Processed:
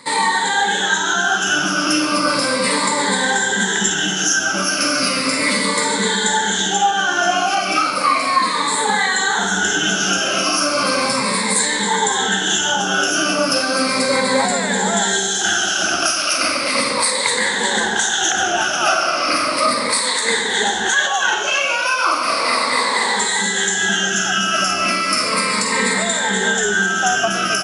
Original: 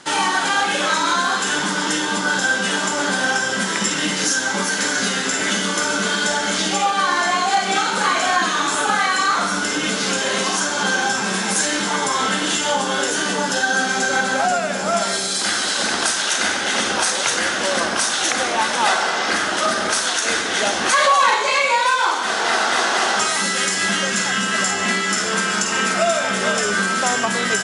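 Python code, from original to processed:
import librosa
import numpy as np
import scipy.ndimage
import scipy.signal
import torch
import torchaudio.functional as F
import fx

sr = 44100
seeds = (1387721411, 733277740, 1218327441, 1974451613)

p1 = fx.spec_ripple(x, sr, per_octave=0.97, drift_hz=-0.35, depth_db=18)
p2 = fx.rider(p1, sr, range_db=10, speed_s=0.5)
p3 = p2 + fx.echo_single(p2, sr, ms=570, db=-21.0, dry=0)
y = p3 * librosa.db_to_amplitude(-1.5)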